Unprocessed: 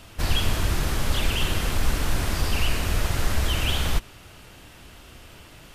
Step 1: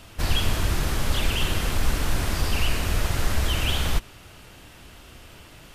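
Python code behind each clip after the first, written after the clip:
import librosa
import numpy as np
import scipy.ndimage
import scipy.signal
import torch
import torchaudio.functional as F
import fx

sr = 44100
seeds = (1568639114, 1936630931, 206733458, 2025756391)

y = x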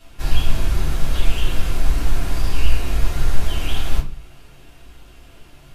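y = fx.room_shoebox(x, sr, seeds[0], volume_m3=160.0, walls='furnished', distance_m=3.3)
y = y * 10.0 ** (-9.5 / 20.0)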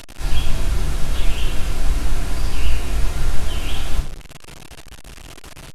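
y = fx.delta_mod(x, sr, bps=64000, step_db=-29.5)
y = y * 10.0 ** (-1.0 / 20.0)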